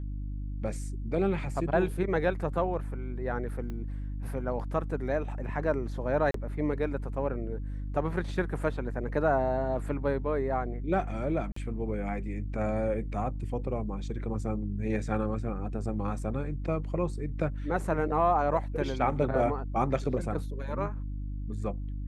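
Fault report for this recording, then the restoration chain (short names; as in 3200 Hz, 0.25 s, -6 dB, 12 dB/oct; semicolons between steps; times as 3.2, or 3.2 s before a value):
hum 50 Hz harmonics 6 -35 dBFS
3.7 pop -27 dBFS
6.31–6.34 gap 33 ms
11.52–11.56 gap 44 ms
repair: de-click; de-hum 50 Hz, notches 6; interpolate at 6.31, 33 ms; interpolate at 11.52, 44 ms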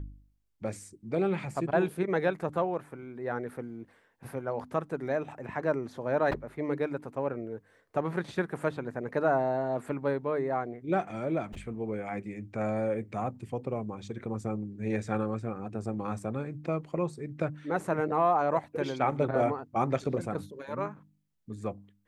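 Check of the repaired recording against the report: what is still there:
3.7 pop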